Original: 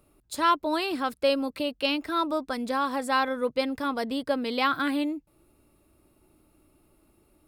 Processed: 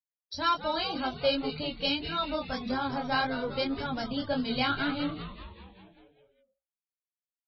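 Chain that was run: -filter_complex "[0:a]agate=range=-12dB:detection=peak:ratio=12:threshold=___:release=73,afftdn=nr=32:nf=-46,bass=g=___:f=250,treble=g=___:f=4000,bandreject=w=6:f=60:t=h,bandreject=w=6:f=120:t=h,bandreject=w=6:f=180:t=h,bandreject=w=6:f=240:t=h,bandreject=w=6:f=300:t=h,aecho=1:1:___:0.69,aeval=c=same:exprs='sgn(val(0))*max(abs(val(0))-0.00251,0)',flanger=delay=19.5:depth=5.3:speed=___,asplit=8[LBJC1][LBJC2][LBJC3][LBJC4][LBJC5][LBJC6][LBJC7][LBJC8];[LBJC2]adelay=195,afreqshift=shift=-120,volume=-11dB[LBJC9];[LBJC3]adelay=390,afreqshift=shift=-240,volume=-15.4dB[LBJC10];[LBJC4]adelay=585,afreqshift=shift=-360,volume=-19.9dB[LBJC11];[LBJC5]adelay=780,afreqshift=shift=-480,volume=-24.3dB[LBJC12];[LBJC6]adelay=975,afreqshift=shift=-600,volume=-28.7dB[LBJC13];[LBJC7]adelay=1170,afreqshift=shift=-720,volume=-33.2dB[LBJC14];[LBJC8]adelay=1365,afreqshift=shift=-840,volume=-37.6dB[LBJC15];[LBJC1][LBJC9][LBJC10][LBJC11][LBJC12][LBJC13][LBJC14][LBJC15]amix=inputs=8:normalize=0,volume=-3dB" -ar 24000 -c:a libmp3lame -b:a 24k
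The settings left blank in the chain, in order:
-58dB, 14, 13, 1.3, 1.8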